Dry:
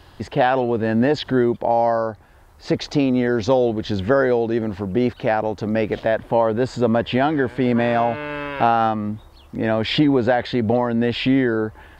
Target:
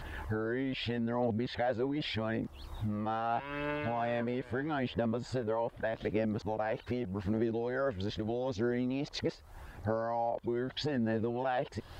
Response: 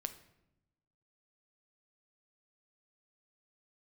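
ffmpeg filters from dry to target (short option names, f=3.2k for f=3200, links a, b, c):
-af "areverse,acompressor=threshold=-32dB:ratio=6,aphaser=in_gain=1:out_gain=1:delay=2.3:decay=0.31:speed=0.81:type=triangular"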